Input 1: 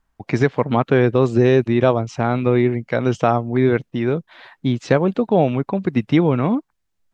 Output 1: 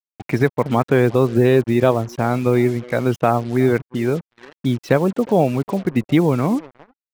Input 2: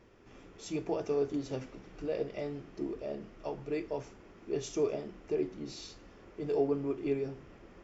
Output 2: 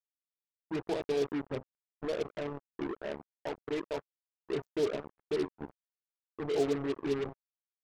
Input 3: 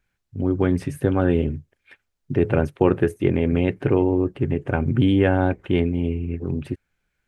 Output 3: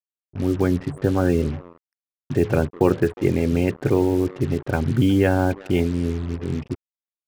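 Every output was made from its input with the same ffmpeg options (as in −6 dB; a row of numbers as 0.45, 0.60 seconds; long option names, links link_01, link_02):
-filter_complex "[0:a]asplit=2[link_01][link_02];[link_02]adelay=360,highpass=300,lowpass=3400,asoftclip=type=hard:threshold=-10.5dB,volume=-20dB[link_03];[link_01][link_03]amix=inputs=2:normalize=0,afftfilt=real='re*gte(hypot(re,im),0.0224)':imag='im*gte(hypot(re,im),0.0224)':win_size=1024:overlap=0.75,acrusher=bits=5:mix=0:aa=0.5"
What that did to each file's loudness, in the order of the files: 0.0, 0.0, 0.0 LU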